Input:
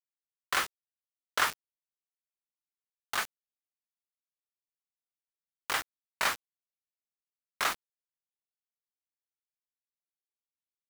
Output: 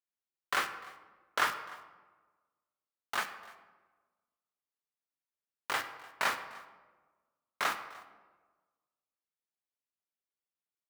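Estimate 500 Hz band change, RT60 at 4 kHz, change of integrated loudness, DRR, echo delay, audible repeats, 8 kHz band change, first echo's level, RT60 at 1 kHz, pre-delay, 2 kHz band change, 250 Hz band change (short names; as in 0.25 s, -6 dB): 0.0 dB, 0.80 s, -2.0 dB, 8.0 dB, 0.298 s, 1, -6.0 dB, -22.0 dB, 1.2 s, 5 ms, -1.5 dB, -0.5 dB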